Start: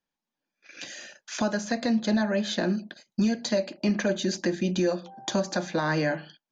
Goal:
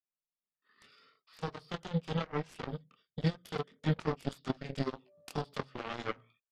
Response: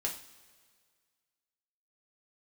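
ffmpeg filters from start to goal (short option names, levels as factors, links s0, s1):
-af "flanger=delay=19:depth=4.1:speed=0.77,aeval=exprs='0.158*(cos(1*acos(clip(val(0)/0.158,-1,1)))-cos(1*PI/2))+0.0501*(cos(3*acos(clip(val(0)/0.158,-1,1)))-cos(3*PI/2))+0.00112*(cos(5*acos(clip(val(0)/0.158,-1,1)))-cos(5*PI/2))+0.00501*(cos(7*acos(clip(val(0)/0.158,-1,1)))-cos(7*PI/2))':c=same,asetrate=33038,aresample=44100,atempo=1.33484"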